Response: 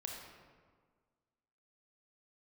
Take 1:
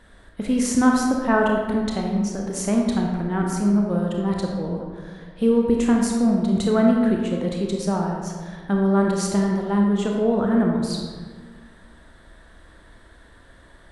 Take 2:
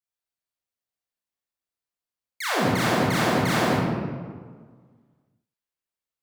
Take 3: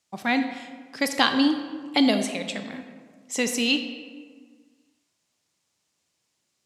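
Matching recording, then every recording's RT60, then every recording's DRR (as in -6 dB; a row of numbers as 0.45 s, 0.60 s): 1; 1.6 s, 1.6 s, 1.6 s; 0.0 dB, -7.5 dB, 7.0 dB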